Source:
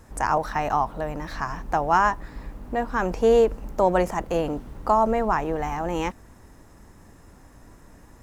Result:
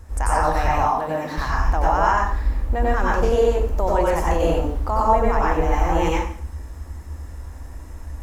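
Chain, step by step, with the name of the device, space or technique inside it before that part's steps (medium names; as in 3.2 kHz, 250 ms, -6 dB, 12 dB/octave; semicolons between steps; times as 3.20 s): car stereo with a boomy subwoofer (resonant low shelf 100 Hz +9 dB, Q 3; peak limiter -14 dBFS, peak gain reduction 7.5 dB); 0.71–1.38 s: high-pass 130 Hz 24 dB/octave; plate-style reverb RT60 0.51 s, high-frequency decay 0.95×, pre-delay 80 ms, DRR -5 dB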